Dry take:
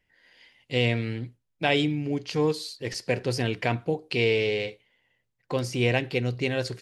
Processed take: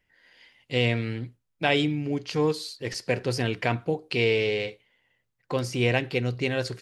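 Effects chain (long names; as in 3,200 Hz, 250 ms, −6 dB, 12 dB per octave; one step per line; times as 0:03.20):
parametric band 1,300 Hz +3 dB 0.68 octaves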